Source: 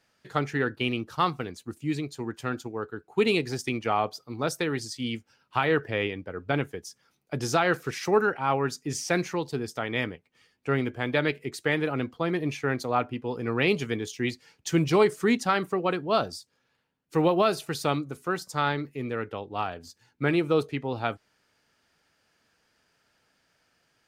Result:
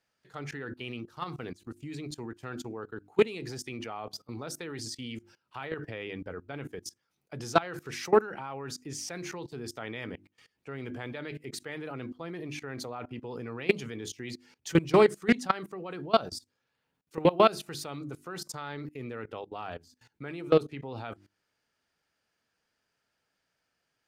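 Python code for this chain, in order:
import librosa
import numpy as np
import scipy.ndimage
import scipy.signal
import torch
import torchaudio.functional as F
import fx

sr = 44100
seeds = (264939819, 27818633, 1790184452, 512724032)

y = fx.hum_notches(x, sr, base_hz=50, count=7)
y = fx.level_steps(y, sr, step_db=21)
y = fx.doppler_dist(y, sr, depth_ms=0.2)
y = y * librosa.db_to_amplitude(3.5)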